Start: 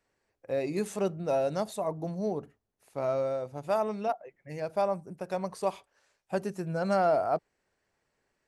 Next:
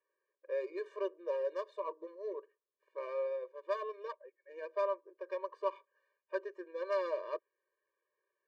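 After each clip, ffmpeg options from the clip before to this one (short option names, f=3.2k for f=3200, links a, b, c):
-af "bandpass=f=2.1k:t=q:w=0.52:csg=0,adynamicsmooth=sensitivity=2.5:basefreq=1.6k,afftfilt=real='re*eq(mod(floor(b*sr/1024/310),2),1)':imag='im*eq(mod(floor(b*sr/1024/310),2),1)':win_size=1024:overlap=0.75,volume=2dB"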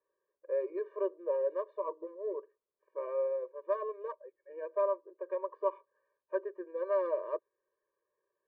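-af "lowpass=1.1k,volume=4dB"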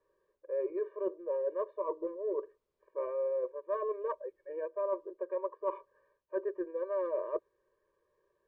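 -af "aemphasis=mode=reproduction:type=bsi,areverse,acompressor=threshold=-39dB:ratio=6,areverse,volume=7.5dB"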